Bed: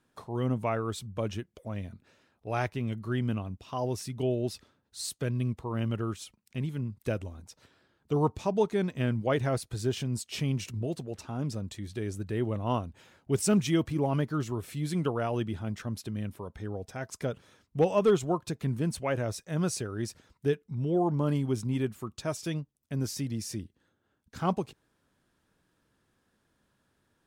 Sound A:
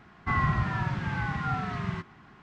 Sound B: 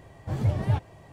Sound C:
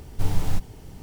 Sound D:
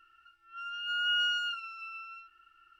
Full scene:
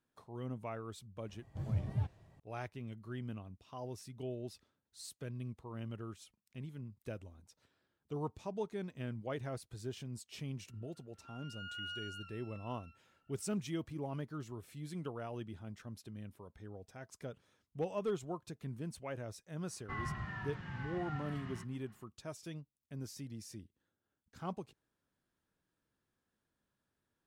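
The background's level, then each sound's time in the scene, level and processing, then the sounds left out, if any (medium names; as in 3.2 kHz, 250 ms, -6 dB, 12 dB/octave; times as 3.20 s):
bed -13 dB
1.28 s: add B -17 dB + tone controls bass +7 dB, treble +1 dB
10.70 s: add D -15.5 dB
19.62 s: add A -15 dB + small resonant body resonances 1.8/2.9 kHz, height 11 dB
not used: C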